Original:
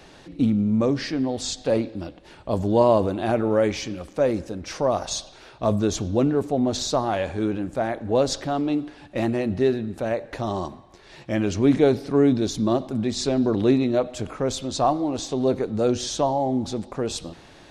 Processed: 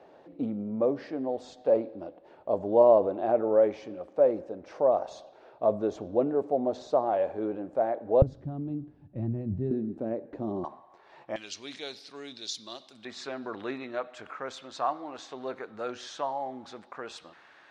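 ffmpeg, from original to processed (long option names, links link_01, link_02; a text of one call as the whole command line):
ffmpeg -i in.wav -af "asetnsamples=nb_out_samples=441:pad=0,asendcmd='8.22 bandpass f 120;9.71 bandpass f 290;10.64 bandpass f 900;11.36 bandpass f 4200;13.05 bandpass f 1500',bandpass=frequency=590:width_type=q:width=1.7:csg=0" out.wav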